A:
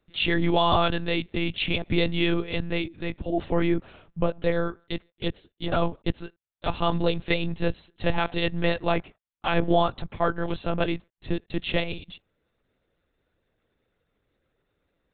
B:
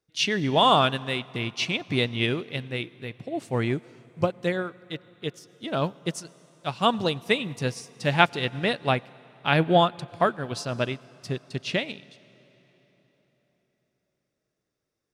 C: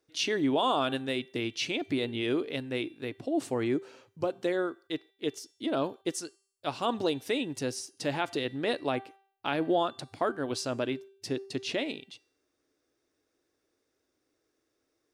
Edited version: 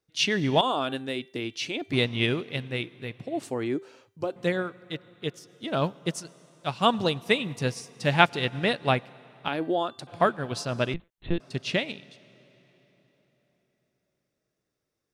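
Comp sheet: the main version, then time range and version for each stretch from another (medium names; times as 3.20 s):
B
0.61–1.93 s: from C
3.43–4.36 s: from C
9.48–10.07 s: from C
10.94–11.40 s: from A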